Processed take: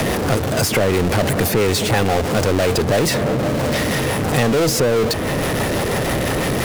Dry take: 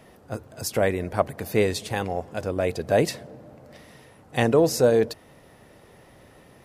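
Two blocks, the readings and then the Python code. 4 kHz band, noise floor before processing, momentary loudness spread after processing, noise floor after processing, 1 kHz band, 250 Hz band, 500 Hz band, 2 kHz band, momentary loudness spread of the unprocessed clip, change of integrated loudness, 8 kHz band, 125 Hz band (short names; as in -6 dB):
+13.5 dB, -53 dBFS, 4 LU, -21 dBFS, +9.5 dB, +9.5 dB, +5.5 dB, +11.5 dB, 16 LU, +6.0 dB, +12.0 dB, +12.0 dB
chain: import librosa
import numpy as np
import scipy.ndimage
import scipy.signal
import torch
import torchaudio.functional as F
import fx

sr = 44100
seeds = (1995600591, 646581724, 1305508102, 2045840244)

p1 = fx.rotary(x, sr, hz=6.0)
p2 = fx.over_compress(p1, sr, threshold_db=-29.0, ratio=-1.0)
p3 = p1 + (p2 * 10.0 ** (1.0 / 20.0))
p4 = fx.power_curve(p3, sr, exponent=0.35)
p5 = fx.band_squash(p4, sr, depth_pct=70)
y = p5 * 10.0 ** (-3.5 / 20.0)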